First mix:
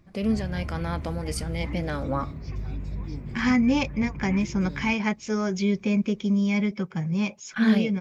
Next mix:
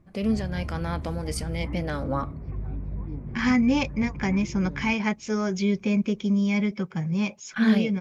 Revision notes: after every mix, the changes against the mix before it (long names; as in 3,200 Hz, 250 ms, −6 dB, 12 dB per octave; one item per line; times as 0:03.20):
background: add low-pass filter 1,300 Hz 12 dB per octave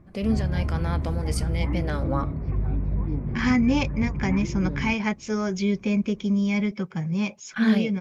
background +7.0 dB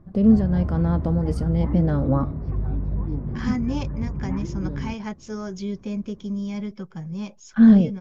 first voice: add spectral tilt −4.5 dB per octave
second voice −5.5 dB
master: add parametric band 2,300 Hz −10.5 dB 0.49 octaves